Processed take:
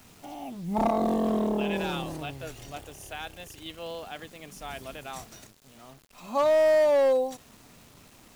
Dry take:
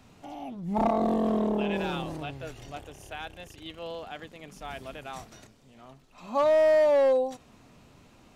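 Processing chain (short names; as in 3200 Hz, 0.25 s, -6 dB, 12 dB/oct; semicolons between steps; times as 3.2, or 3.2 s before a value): high shelf 6100 Hz +10 dB; bit-crush 9-bit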